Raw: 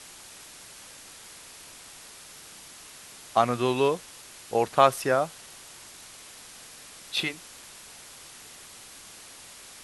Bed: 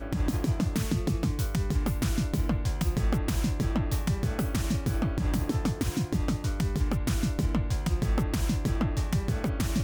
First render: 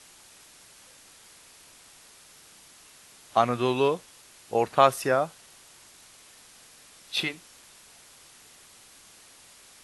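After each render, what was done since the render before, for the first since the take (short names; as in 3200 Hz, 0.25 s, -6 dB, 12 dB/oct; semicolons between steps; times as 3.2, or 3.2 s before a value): noise print and reduce 6 dB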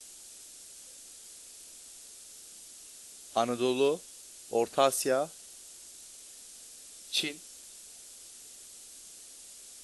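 gate with hold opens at -44 dBFS; graphic EQ 125/1000/2000/8000 Hz -12/-10/-7/+7 dB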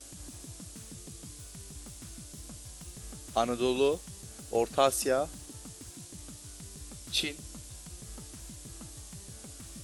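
add bed -20.5 dB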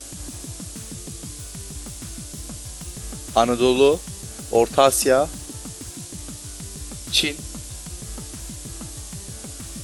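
gain +11 dB; limiter -2 dBFS, peak gain reduction 2.5 dB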